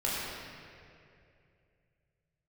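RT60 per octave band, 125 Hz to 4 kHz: 3.6, 2.7, 2.9, 2.2, 2.4, 1.7 s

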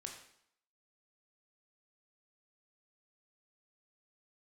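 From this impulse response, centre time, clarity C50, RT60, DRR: 29 ms, 5.5 dB, 0.70 s, 1.5 dB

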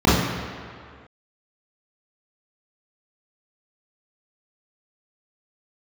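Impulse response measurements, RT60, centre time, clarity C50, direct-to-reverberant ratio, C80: 2.1 s, 0.103 s, -1.0 dB, -10.0 dB, 2.5 dB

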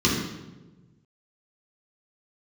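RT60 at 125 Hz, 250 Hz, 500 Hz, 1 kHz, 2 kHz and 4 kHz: 1.8, 1.5, 1.4, 0.95, 0.85, 0.80 s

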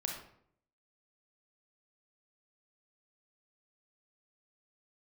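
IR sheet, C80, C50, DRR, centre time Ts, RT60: 7.5 dB, 3.5 dB, 0.5 dB, 35 ms, 0.65 s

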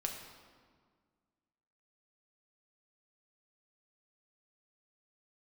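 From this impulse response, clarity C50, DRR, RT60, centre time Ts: 5.0 dB, 1.5 dB, 1.7 s, 45 ms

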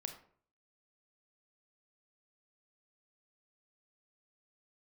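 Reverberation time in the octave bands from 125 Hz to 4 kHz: 0.65, 0.55, 0.55, 0.50, 0.40, 0.30 s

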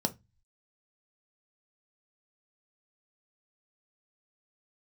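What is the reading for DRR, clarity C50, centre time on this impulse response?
6.0 dB, 20.0 dB, 5 ms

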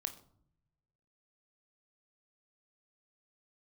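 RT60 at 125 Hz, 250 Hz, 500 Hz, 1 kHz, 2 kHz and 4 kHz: 1.6, 1.0, 0.70, 0.60, 0.35, 0.35 s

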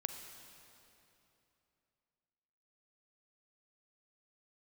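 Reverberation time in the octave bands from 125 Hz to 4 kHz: 3.3, 3.1, 3.1, 2.9, 2.7, 2.5 s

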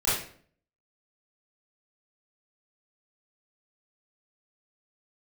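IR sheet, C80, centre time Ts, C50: 6.5 dB, 56 ms, 1.0 dB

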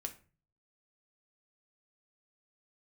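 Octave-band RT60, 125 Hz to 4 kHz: 0.70, 0.50, 0.40, 0.35, 0.35, 0.25 s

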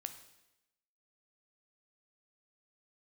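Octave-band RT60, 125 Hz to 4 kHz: 0.90, 0.95, 0.95, 0.90, 0.95, 0.90 s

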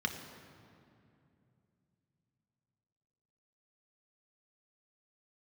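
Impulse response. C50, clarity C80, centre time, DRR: 7.5 dB, 8.5 dB, 35 ms, 4.0 dB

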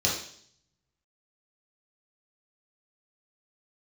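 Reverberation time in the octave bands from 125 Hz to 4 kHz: 0.95, 0.70, 0.60, 0.55, 0.60, 0.70 s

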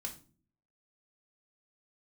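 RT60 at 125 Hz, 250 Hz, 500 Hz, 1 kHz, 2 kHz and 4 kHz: 0.70, 0.70, 0.50, 0.35, 0.30, 0.30 s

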